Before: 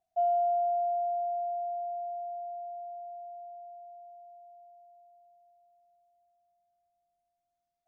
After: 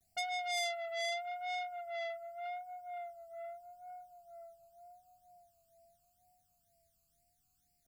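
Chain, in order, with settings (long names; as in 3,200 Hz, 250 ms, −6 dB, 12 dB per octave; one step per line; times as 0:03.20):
bass and treble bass +10 dB, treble +14 dB
floating-point word with a short mantissa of 8 bits
pitch vibrato 0.83 Hz 64 cents
all-pass phaser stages 12, 2.1 Hz, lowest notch 590–1,200 Hz
saturating transformer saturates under 3,800 Hz
level +7.5 dB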